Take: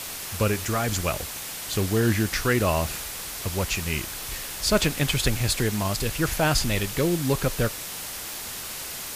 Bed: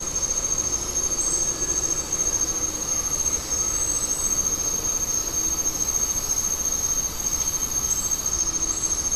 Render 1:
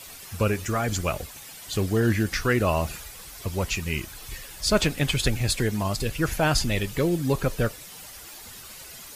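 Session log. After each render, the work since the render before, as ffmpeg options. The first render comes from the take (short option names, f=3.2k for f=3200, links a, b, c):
-af "afftdn=nr=11:nf=-35"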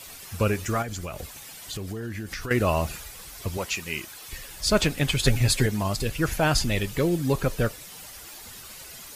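-filter_complex "[0:a]asettb=1/sr,asplit=3[a][b][c];[a]atrim=end=0.824[d];[b]atrim=start=0.82:end=2.51,asetpts=PTS-STARTPTS,afade=t=in:d=0.004:c=qsin,afade=t=out:st=1.686:d=0.004:c=qsin,acompressor=threshold=-30dB:ratio=6:attack=3.2:release=140:knee=1:detection=peak[e];[c]atrim=start=2.506[f];[d][e]acrossfade=d=0.004:c1=hsin:c2=qsin[g];[g][f]acrossfade=d=0.004:c1=qsin:c2=hsin,asettb=1/sr,asplit=3[h][i][j];[h]atrim=end=3.574[k];[i]atrim=start=3.57:end=4.33,asetpts=PTS-STARTPTS,afade=t=in:d=0.004:c=qsin,afade=t=out:st=0.756:d=0.004:c=qsin,highpass=f=380:p=1[l];[j]atrim=start=4.326[m];[k][l]acrossfade=d=0.004:c1=hsin:c2=qsin[n];[n][m]acrossfade=d=0.004:c1=qsin:c2=hsin,asettb=1/sr,asplit=3[o][p][q];[o]atrim=end=5.244[r];[p]atrim=start=5.24:end=5.66,asetpts=PTS-STARTPTS,afade=t=in:d=0.004:c=qsin,afade=t=out:st=0.416:d=0.004:c=qsin,aecho=1:1:7.4:0.87,atrim=end_sample=18522[s];[q]atrim=start=5.656[t];[r][s]acrossfade=d=0.004:c1=hsin:c2=qsin[u];[u][t]acrossfade=d=0.004:c1=qsin:c2=hsin"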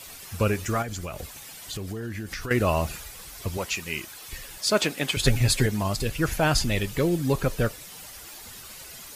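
-filter_complex "[0:a]asettb=1/sr,asplit=3[a][b][c];[a]atrim=end=4.584[d];[b]atrim=start=4.58:end=5.17,asetpts=PTS-STARTPTS,afade=t=in:d=0.004:c=qsin,afade=t=out:st=0.586:d=0.004:c=qsin,highpass=240[e];[c]atrim=start=5.166[f];[d][e]acrossfade=d=0.004:c1=hsin:c2=qsin[g];[g][f]acrossfade=d=0.004:c1=qsin:c2=hsin"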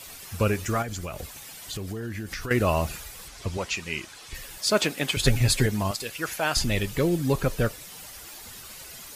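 -filter_complex "[0:a]asettb=1/sr,asplit=3[a][b][c];[a]atrim=end=3.284[d];[b]atrim=start=3.28:end=4.35,asetpts=PTS-STARTPTS,afade=t=in:d=0.004:c=qsin,afade=t=out:st=1.066:d=0.004:c=qsin,lowpass=7.7k[e];[c]atrim=start=4.346[f];[d][e]acrossfade=d=0.004:c1=hsin:c2=qsin[g];[g][f]acrossfade=d=0.004:c1=qsin:c2=hsin,asettb=1/sr,asplit=3[h][i][j];[h]atrim=end=5.914[k];[i]atrim=start=5.91:end=6.57,asetpts=PTS-STARTPTS,afade=t=in:d=0.004:c=qsin,afade=t=out:st=0.656:d=0.004:c=qsin,highpass=f=770:p=1[l];[j]atrim=start=6.566[m];[k][l]acrossfade=d=0.004:c1=hsin:c2=qsin[n];[n][m]acrossfade=d=0.004:c1=qsin:c2=hsin"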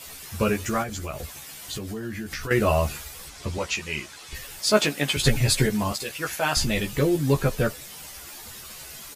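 -filter_complex "[0:a]asplit=2[a][b];[b]adelay=14,volume=-3dB[c];[a][c]amix=inputs=2:normalize=0"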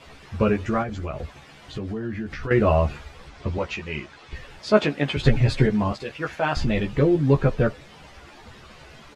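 -af "lowpass=3.3k,tiltshelf=f=1.4k:g=3.5"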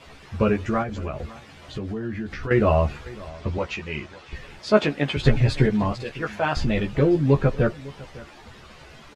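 -af "aecho=1:1:554:0.1"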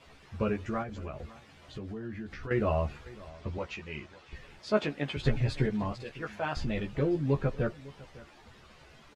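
-af "volume=-9.5dB"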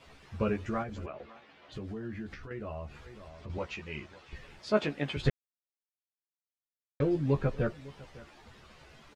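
-filter_complex "[0:a]asettb=1/sr,asplit=3[a][b][c];[a]atrim=end=1.064[d];[b]atrim=start=1.06:end=1.72,asetpts=PTS-STARTPTS,afade=t=in:d=0.004:c=qsin,afade=t=out:st=0.656:d=0.004:c=qsin,acrossover=split=230 4400:gain=0.126 1 0.0794[e][f][g];[e][f][g]amix=inputs=3:normalize=0[h];[c]atrim=start=1.716[i];[d][h]acrossfade=d=0.004:c1=hsin:c2=qsin[j];[j][i]acrossfade=d=0.004:c1=qsin:c2=hsin,asettb=1/sr,asplit=3[k][l][m];[k]atrim=end=2.344[n];[l]atrim=start=2.34:end=3.5,asetpts=PTS-STARTPTS,afade=t=in:d=0.004:c=qsin,afade=t=out:st=1.156:d=0.004:c=qsin,acompressor=threshold=-46dB:ratio=2:attack=3.2:release=140:knee=1:detection=peak[o];[m]atrim=start=3.496[p];[n][o]acrossfade=d=0.004:c1=hsin:c2=qsin[q];[q][p]acrossfade=d=0.004:c1=qsin:c2=hsin,asplit=3[r][s][t];[r]atrim=end=5.3,asetpts=PTS-STARTPTS,afade=t=out:st=5.296:d=0.004:c=hsin[u];[s]atrim=start=5.3:end=7,asetpts=PTS-STARTPTS,volume=0[v];[t]atrim=start=7,asetpts=PTS-STARTPTS,afade=t=in:d=0.004:c=hsin[w];[u][v][w]concat=n=3:v=0:a=1"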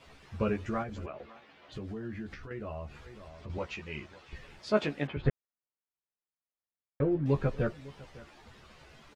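-filter_complex "[0:a]asettb=1/sr,asplit=3[a][b][c];[a]atrim=end=5.074[d];[b]atrim=start=5.07:end=7.26,asetpts=PTS-STARTPTS,afade=t=in:d=0.004:c=qsin,afade=t=out:st=2.186:d=0.004:c=qsin,lowpass=1.8k[e];[c]atrim=start=7.256[f];[d][e]acrossfade=d=0.004:c1=hsin:c2=qsin[g];[g][f]acrossfade=d=0.004:c1=qsin:c2=hsin"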